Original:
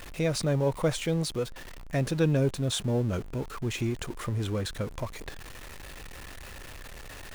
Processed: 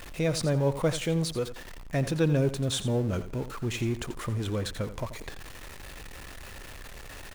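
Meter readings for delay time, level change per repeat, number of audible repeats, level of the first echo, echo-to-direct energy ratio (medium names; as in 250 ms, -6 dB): 86 ms, -14.0 dB, 2, -13.0 dB, -13.0 dB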